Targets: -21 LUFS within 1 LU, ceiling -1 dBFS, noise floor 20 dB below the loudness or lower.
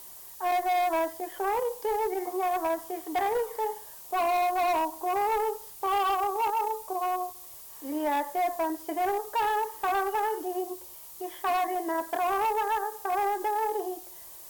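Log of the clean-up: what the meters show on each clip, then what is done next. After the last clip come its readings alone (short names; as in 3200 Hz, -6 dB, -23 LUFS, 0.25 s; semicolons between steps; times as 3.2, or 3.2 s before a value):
noise floor -46 dBFS; noise floor target -49 dBFS; loudness -29.0 LUFS; peak -21.0 dBFS; loudness target -21.0 LUFS
-> noise print and reduce 6 dB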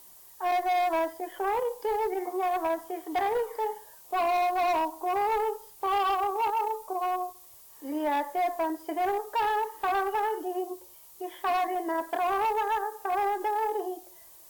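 noise floor -52 dBFS; loudness -29.0 LUFS; peak -22.0 dBFS; loudness target -21.0 LUFS
-> gain +8 dB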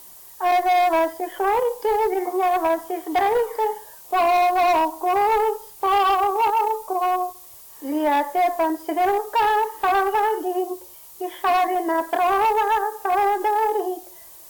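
loudness -21.0 LUFS; peak -14.0 dBFS; noise floor -44 dBFS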